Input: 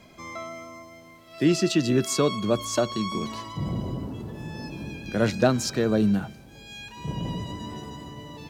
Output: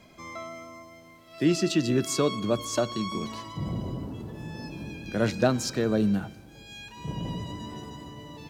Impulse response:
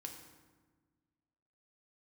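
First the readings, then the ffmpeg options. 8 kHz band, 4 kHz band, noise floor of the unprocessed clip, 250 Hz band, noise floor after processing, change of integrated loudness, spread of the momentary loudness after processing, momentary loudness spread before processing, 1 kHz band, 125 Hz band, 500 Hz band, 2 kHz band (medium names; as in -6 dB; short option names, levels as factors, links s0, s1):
-2.5 dB, -2.5 dB, -49 dBFS, -2.5 dB, -51 dBFS, -2.5 dB, 18 LU, 18 LU, -2.5 dB, -2.5 dB, -2.5 dB, -2.5 dB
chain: -filter_complex "[0:a]asplit=2[s0][s1];[1:a]atrim=start_sample=2205[s2];[s1][s2]afir=irnorm=-1:irlink=0,volume=0.266[s3];[s0][s3]amix=inputs=2:normalize=0,volume=0.668"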